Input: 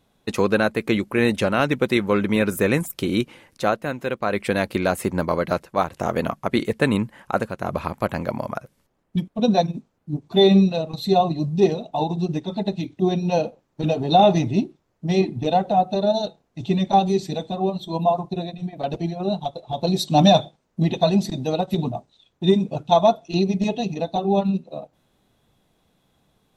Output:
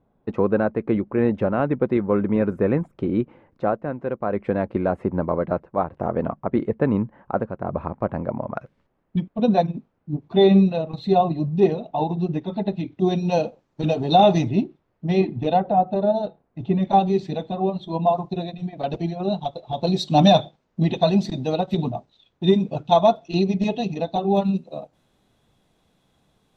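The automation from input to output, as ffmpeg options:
ffmpeg -i in.wav -af "asetnsamples=nb_out_samples=441:pad=0,asendcmd='8.57 lowpass f 2600;12.99 lowpass f 6400;14.49 lowpass f 3100;15.6 lowpass f 1700;16.83 lowpass f 2900;18.07 lowpass f 4800;24.37 lowpass f 11000',lowpass=1000" out.wav

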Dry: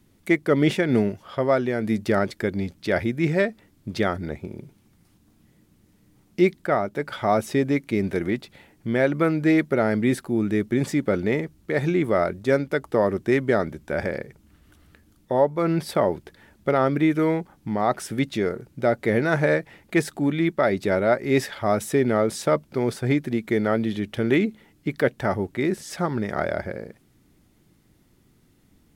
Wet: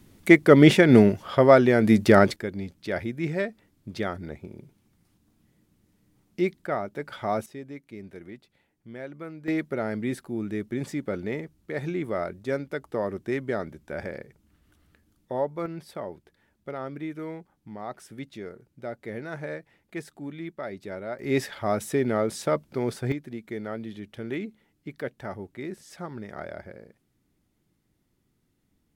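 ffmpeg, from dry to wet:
ffmpeg -i in.wav -af "asetnsamples=nb_out_samples=441:pad=0,asendcmd='2.36 volume volume -6.5dB;7.46 volume volume -18dB;9.48 volume volume -8dB;15.66 volume volume -14.5dB;21.19 volume volume -4dB;23.12 volume volume -12dB',volume=5.5dB" out.wav

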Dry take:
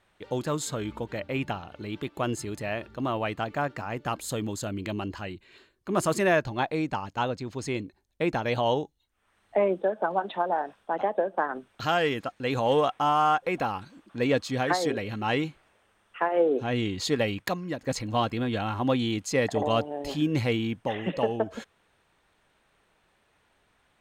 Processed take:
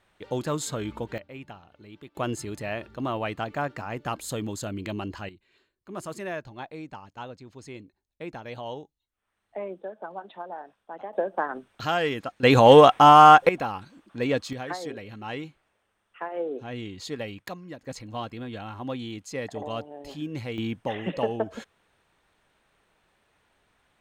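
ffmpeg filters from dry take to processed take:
ffmpeg -i in.wav -af "asetnsamples=nb_out_samples=441:pad=0,asendcmd='1.18 volume volume -12dB;2.15 volume volume -0.5dB;5.29 volume volume -11dB;11.13 volume volume -0.5dB;12.43 volume volume 11dB;13.49 volume volume -1dB;14.53 volume volume -8dB;20.58 volume volume -0.5dB',volume=0.5dB" out.wav

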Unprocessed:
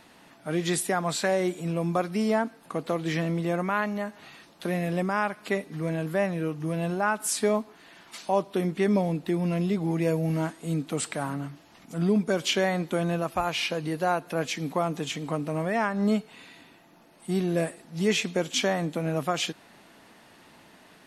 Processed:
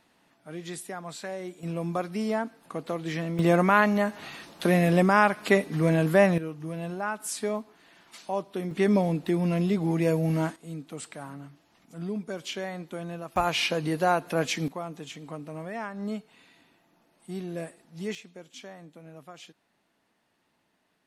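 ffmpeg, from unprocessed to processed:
ffmpeg -i in.wav -af "asetnsamples=nb_out_samples=441:pad=0,asendcmd='1.63 volume volume -3.5dB;3.39 volume volume 6.5dB;6.38 volume volume -5.5dB;8.71 volume volume 1dB;10.56 volume volume -9.5dB;13.36 volume volume 2dB;14.68 volume volume -9dB;18.15 volume volume -19dB',volume=-11dB" out.wav

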